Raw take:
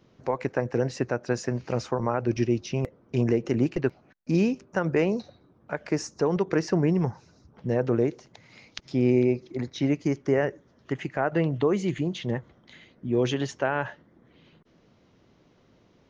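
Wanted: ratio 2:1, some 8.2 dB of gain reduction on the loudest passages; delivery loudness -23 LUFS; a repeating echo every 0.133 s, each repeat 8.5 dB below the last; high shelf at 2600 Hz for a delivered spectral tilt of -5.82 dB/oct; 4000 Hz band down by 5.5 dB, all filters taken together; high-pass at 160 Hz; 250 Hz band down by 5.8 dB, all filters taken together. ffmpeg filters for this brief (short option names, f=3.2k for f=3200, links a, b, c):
-af "highpass=160,equalizer=f=250:t=o:g=-7,highshelf=f=2.6k:g=-3.5,equalizer=f=4k:t=o:g=-4.5,acompressor=threshold=-37dB:ratio=2,aecho=1:1:133|266|399|532:0.376|0.143|0.0543|0.0206,volume=14.5dB"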